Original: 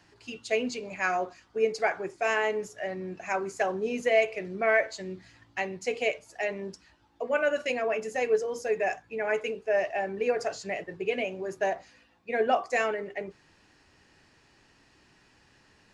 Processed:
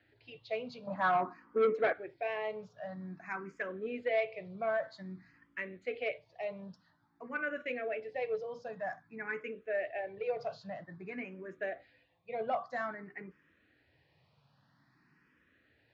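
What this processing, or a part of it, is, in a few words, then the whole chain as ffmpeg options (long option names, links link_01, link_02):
barber-pole phaser into a guitar amplifier: -filter_complex "[0:a]asettb=1/sr,asplit=3[link_01][link_02][link_03];[link_01]atrim=end=0.874[link_04];[link_02]atrim=start=0.87:end=1.93,asetpts=PTS-STARTPTS,afade=type=in:duration=0.004:curve=qsin,afade=type=out:start_time=1.056:duration=0.004:curve=qsin,equalizer=frequency=250:width_type=o:width=1:gain=10,equalizer=frequency=500:width_type=o:width=1:gain=10,equalizer=frequency=1000:width_type=o:width=1:gain=11,equalizer=frequency=8000:width_type=o:width=1:gain=-4[link_05];[link_03]atrim=start=1.926[link_06];[link_04][link_05]acrossfade=duration=0.004:curve1=hsin:curve2=qsin[link_07];[link_07][link_06]acrossfade=duration=0.004:curve1=qsin:curve2=hsin,asplit=2[link_08][link_09];[link_09]afreqshift=0.51[link_10];[link_08][link_10]amix=inputs=2:normalize=1,asoftclip=type=tanh:threshold=-16dB,highpass=88,equalizer=frequency=140:width_type=q:width=4:gain=9,equalizer=frequency=390:width_type=q:width=4:gain=-7,equalizer=frequency=840:width_type=q:width=4:gain=-5,equalizer=frequency=2800:width_type=q:width=4:gain=-7,lowpass=frequency=3800:width=0.5412,lowpass=frequency=3800:width=1.3066,volume=-4dB"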